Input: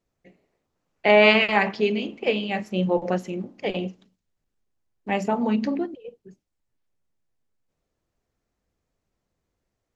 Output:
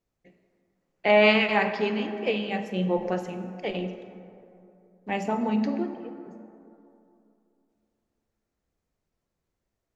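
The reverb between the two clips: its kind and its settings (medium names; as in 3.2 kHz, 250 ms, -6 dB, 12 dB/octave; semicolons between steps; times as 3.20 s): plate-style reverb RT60 2.8 s, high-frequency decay 0.4×, DRR 7 dB; trim -4 dB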